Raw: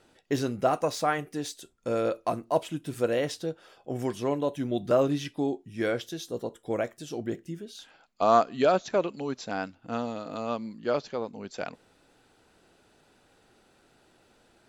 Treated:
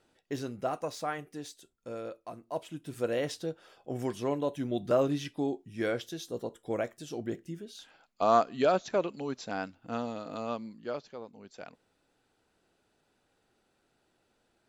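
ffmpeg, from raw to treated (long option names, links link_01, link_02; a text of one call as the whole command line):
ffmpeg -i in.wav -af "volume=4dB,afade=type=out:start_time=1.35:duration=0.94:silence=0.446684,afade=type=in:start_time=2.29:duration=1.01:silence=0.251189,afade=type=out:start_time=10.43:duration=0.6:silence=0.398107" out.wav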